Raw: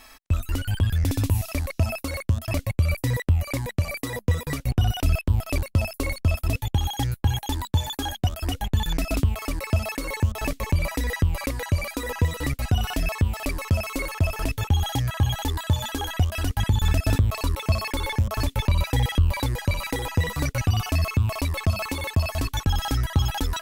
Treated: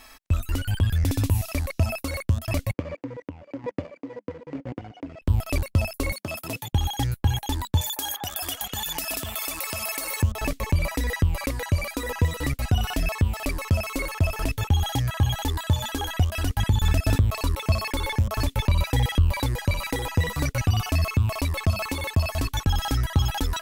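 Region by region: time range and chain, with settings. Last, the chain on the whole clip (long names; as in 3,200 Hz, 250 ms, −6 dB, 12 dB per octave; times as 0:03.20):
0:02.73–0:05.22: running median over 41 samples + square-wave tremolo 1.1 Hz, depth 60%, duty 25% + loudspeaker in its box 220–6,000 Hz, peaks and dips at 290 Hz +9 dB, 510 Hz +7 dB, 940 Hz +5 dB, 2,100 Hz +5 dB, 3,900 Hz −7 dB, 5,700 Hz −5 dB
0:06.12–0:06.73: high-pass filter 140 Hz 24 dB per octave + high-shelf EQ 6,500 Hz +4.5 dB + saturating transformer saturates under 550 Hz
0:07.81–0:10.22: RIAA equalisation recording + downward compressor 3 to 1, threshold −27 dBFS + echo through a band-pass that steps 152 ms, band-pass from 920 Hz, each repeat 0.7 octaves, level 0 dB
whole clip: no processing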